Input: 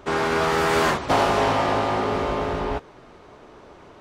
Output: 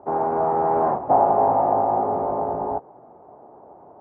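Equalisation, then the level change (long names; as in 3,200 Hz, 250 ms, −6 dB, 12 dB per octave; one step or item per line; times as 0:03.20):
high-pass filter 110 Hz 12 dB per octave
transistor ladder low-pass 870 Hz, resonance 65%
+7.0 dB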